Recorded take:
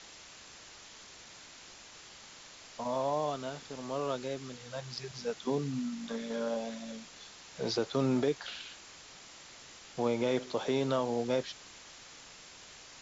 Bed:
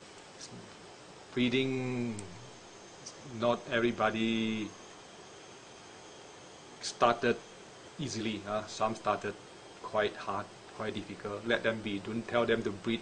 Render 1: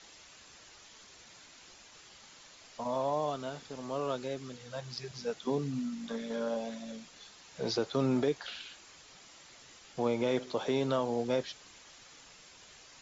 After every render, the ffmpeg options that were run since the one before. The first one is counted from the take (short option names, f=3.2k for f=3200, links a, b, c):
-af "afftdn=nr=6:nf=-53"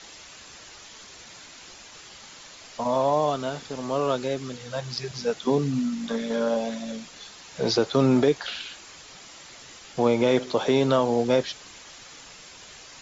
-af "volume=9.5dB"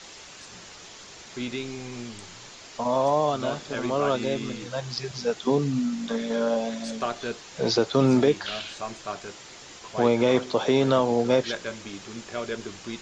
-filter_complex "[1:a]volume=-3dB[a];[0:a][a]amix=inputs=2:normalize=0"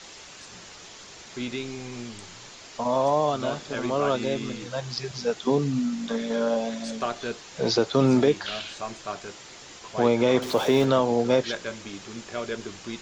-filter_complex "[0:a]asettb=1/sr,asplit=3[a][b][c];[a]atrim=end=10.424[d];[b]atrim=start=10.42:end=10.85,asetpts=PTS-STARTPTS,afade=t=in:d=0.004:c=qsin,afade=t=out:st=0.426:d=0.004:c=qsin,aeval=exprs='val(0)+0.5*0.0251*sgn(val(0))':c=same[e];[c]atrim=start=10.846[f];[d][e]acrossfade=d=0.004:c1=hsin:c2=qsin[g];[g][f]acrossfade=d=0.004:c1=qsin:c2=hsin"